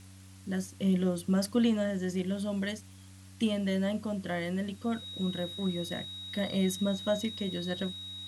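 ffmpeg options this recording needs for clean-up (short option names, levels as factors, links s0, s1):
-af "adeclick=t=4,bandreject=f=95:t=h:w=4,bandreject=f=190:t=h:w=4,bandreject=f=285:t=h:w=4,bandreject=f=3800:w=30,afftdn=nr=24:nf=-51"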